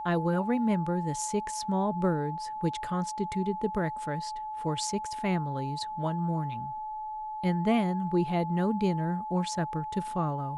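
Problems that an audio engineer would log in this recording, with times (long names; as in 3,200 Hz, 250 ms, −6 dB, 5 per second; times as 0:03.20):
whistle 860 Hz −34 dBFS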